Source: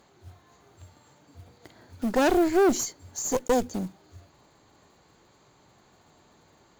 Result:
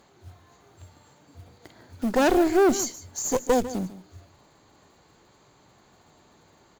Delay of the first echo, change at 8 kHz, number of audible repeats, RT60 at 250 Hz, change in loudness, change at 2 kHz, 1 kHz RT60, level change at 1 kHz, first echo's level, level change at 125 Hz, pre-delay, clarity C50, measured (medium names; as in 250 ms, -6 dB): 149 ms, +1.5 dB, 1, no reverb, +1.5 dB, +1.5 dB, no reverb, +1.5 dB, -15.0 dB, +1.5 dB, no reverb, no reverb